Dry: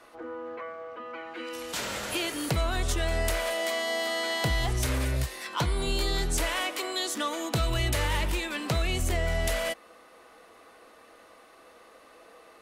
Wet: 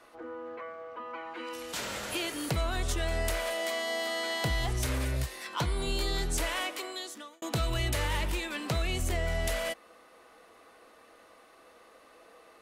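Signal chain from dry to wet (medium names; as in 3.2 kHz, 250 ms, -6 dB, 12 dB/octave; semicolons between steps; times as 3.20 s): 0.95–1.54 s: peaking EQ 970 Hz +9 dB 0.39 oct; 6.63–7.42 s: fade out; trim -3 dB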